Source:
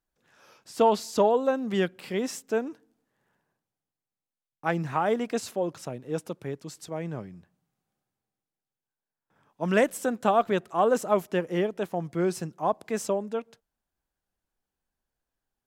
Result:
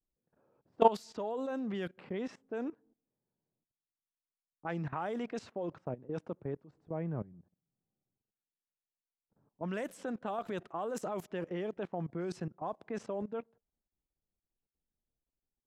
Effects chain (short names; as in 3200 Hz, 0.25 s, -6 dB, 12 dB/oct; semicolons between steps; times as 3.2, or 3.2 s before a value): low-pass opened by the level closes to 470 Hz, open at -19.5 dBFS; 6.86–7.33 low shelf 160 Hz +7.5 dB; level quantiser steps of 18 dB